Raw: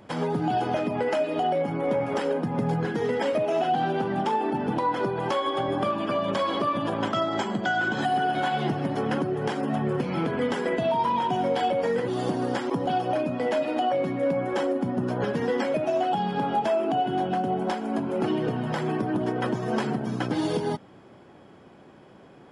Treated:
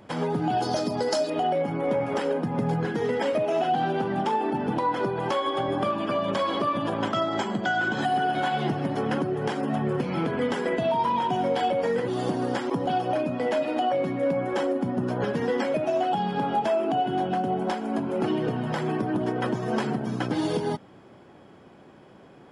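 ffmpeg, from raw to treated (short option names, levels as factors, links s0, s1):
-filter_complex "[0:a]asettb=1/sr,asplit=3[s0][s1][s2];[s0]atrim=end=0.624[s3];[s1]atrim=start=0.62:end=1.3,asetpts=PTS-STARTPTS,afade=t=in:d=0.004:c=qsin,afade=t=out:st=0.676:d=0.004:c=qsin,highshelf=f=3500:t=q:w=3:g=10.5[s4];[s2]atrim=start=1.296[s5];[s3][s4]acrossfade=d=0.004:c1=hsin:c2=qsin[s6];[s6][s5]acrossfade=d=0.004:c1=qsin:c2=hsin"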